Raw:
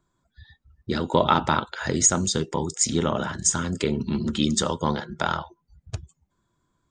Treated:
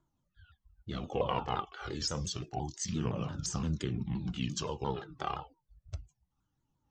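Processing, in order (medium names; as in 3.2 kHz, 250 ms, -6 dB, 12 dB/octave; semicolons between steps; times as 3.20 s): sawtooth pitch modulation -5 st, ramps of 173 ms; phaser 0.29 Hz, delay 2.7 ms, feedback 48%; harmonic-percussive split percussive -7 dB; trim -7 dB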